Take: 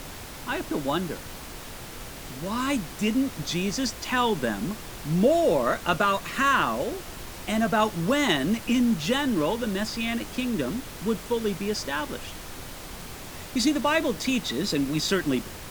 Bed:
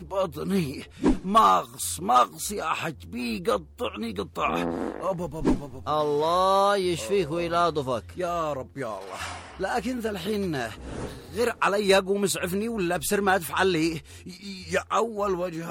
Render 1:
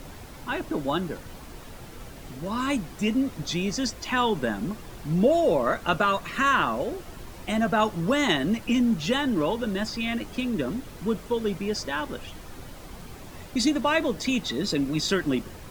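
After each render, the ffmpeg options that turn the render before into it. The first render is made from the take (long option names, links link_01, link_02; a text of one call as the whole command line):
ffmpeg -i in.wav -af "afftdn=noise_reduction=8:noise_floor=-40" out.wav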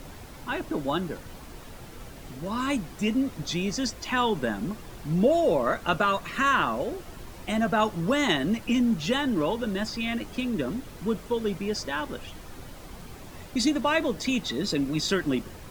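ffmpeg -i in.wav -af "volume=-1dB" out.wav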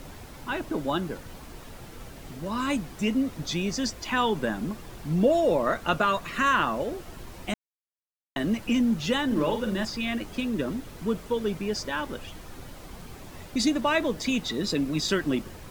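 ffmpeg -i in.wav -filter_complex "[0:a]asettb=1/sr,asplit=3[link_01][link_02][link_03];[link_01]atrim=end=9.264[link_04];[link_02]atrim=start=9.26:end=9.85,asetpts=PTS-STARTPTS,afade=type=in:duration=0.004:curve=qsin,afade=type=out:start_time=0.586:duration=0.004:curve=qsin,asplit=2[link_05][link_06];[link_06]adelay=46,volume=-6.5dB[link_07];[link_05][link_07]amix=inputs=2:normalize=0,atrim=end_sample=26019[link_08];[link_03]atrim=start=9.846[link_09];[link_04][link_08]acrossfade=duration=0.004:curve1=hsin:curve2=qsin[link_10];[link_10][link_09]acrossfade=duration=0.004:curve1=qsin:curve2=hsin,asplit=3[link_11][link_12][link_13];[link_11]atrim=end=7.54,asetpts=PTS-STARTPTS,afade=type=out:start_time=7.536:duration=0.004:curve=hsin[link_14];[link_12]atrim=start=7.54:end=8.36,asetpts=PTS-STARTPTS,volume=0[link_15];[link_13]atrim=start=8.36,asetpts=PTS-STARTPTS,afade=type=in:duration=0.004:curve=hsin[link_16];[link_14][link_15][link_16]concat=n=3:v=0:a=1" out.wav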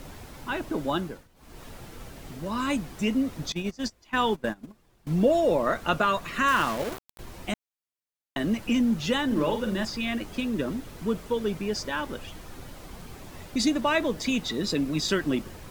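ffmpeg -i in.wav -filter_complex "[0:a]asettb=1/sr,asplit=3[link_01][link_02][link_03];[link_01]atrim=end=3.524[link_04];[link_02]atrim=start=3.52:end=5.07,asetpts=PTS-STARTPTS,afade=type=in:duration=0.004:curve=qsin,afade=type=out:start_time=1.546:duration=0.004:curve=qsin,agate=range=-21dB:threshold=-28dB:ratio=16:release=100:detection=peak[link_05];[link_03]atrim=start=5.066[link_06];[link_04][link_05]acrossfade=duration=0.004:curve1=hsin:curve2=qsin[link_07];[link_07][link_06]acrossfade=duration=0.004:curve1=qsin:curve2=hsin,asettb=1/sr,asplit=3[link_08][link_09][link_10];[link_08]atrim=end=6.484[link_11];[link_09]atrim=start=6.48:end=7.19,asetpts=PTS-STARTPTS,afade=type=in:duration=0.004:curve=qsin,afade=type=out:start_time=0.706:duration=0.004:curve=qsin,aeval=exprs='val(0)*gte(abs(val(0)),0.0282)':channel_layout=same[link_12];[link_10]atrim=start=7.186[link_13];[link_11][link_12]acrossfade=duration=0.004:curve1=hsin:curve2=qsin[link_14];[link_14][link_13]acrossfade=duration=0.004:curve1=qsin:curve2=hsin,asplit=3[link_15][link_16][link_17];[link_15]atrim=end=1.28,asetpts=PTS-STARTPTS,afade=type=out:start_time=0.99:duration=0.29:silence=0.112202[link_18];[link_16]atrim=start=1.28:end=1.35,asetpts=PTS-STARTPTS,volume=-19dB[link_19];[link_17]atrim=start=1.35,asetpts=PTS-STARTPTS,afade=type=in:duration=0.29:silence=0.112202[link_20];[link_18][link_19][link_20]concat=n=3:v=0:a=1" out.wav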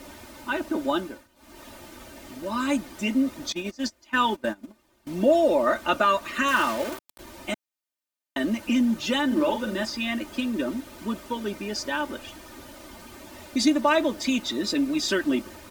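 ffmpeg -i in.wav -af "highpass=frequency=170:poles=1,aecho=1:1:3.3:0.79" out.wav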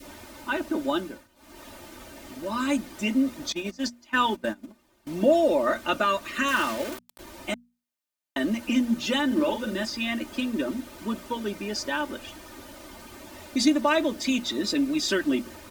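ffmpeg -i in.wav -af "bandreject=frequency=60:width_type=h:width=6,bandreject=frequency=120:width_type=h:width=6,bandreject=frequency=180:width_type=h:width=6,bandreject=frequency=240:width_type=h:width=6,adynamicequalizer=threshold=0.0141:dfrequency=910:dqfactor=0.97:tfrequency=910:tqfactor=0.97:attack=5:release=100:ratio=0.375:range=2.5:mode=cutabove:tftype=bell" out.wav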